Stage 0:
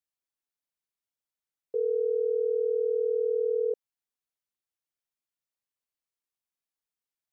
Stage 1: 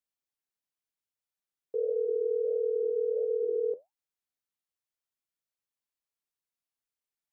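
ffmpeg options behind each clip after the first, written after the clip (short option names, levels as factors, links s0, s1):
-af "flanger=delay=4.7:depth=8.4:regen=-70:speed=1.5:shape=sinusoidal,volume=1.26"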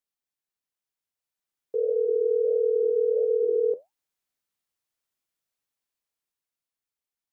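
-af "dynaudnorm=f=240:g=13:m=2"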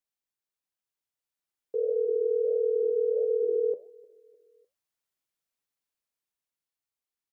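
-af "aecho=1:1:303|606|909:0.0708|0.0319|0.0143,volume=0.75"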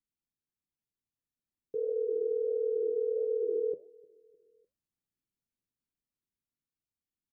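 -af "firequalizer=gain_entry='entry(250,0);entry(480,-13);entry(690,-17)':delay=0.05:min_phase=1,volume=2.24"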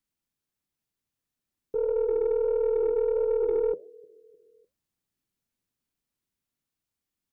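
-af "aeval=exprs='0.0794*(cos(1*acos(clip(val(0)/0.0794,-1,1)))-cos(1*PI/2))+0.00631*(cos(2*acos(clip(val(0)/0.0794,-1,1)))-cos(2*PI/2))+0.002*(cos(5*acos(clip(val(0)/0.0794,-1,1)))-cos(5*PI/2))+0.001*(cos(6*acos(clip(val(0)/0.0794,-1,1)))-cos(6*PI/2))+0.000631*(cos(8*acos(clip(val(0)/0.0794,-1,1)))-cos(8*PI/2))':c=same,volume=1.88"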